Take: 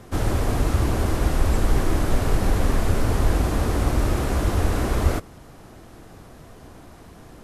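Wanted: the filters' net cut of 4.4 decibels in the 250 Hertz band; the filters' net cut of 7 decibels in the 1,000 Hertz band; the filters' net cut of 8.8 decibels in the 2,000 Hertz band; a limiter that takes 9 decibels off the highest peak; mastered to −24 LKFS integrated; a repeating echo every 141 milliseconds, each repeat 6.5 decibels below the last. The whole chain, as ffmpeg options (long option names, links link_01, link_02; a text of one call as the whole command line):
ffmpeg -i in.wav -af "equalizer=frequency=250:width_type=o:gain=-5.5,equalizer=frequency=1000:width_type=o:gain=-7,equalizer=frequency=2000:width_type=o:gain=-9,alimiter=limit=-16dB:level=0:latency=1,aecho=1:1:141|282|423|564|705|846:0.473|0.222|0.105|0.0491|0.0231|0.0109,volume=3dB" out.wav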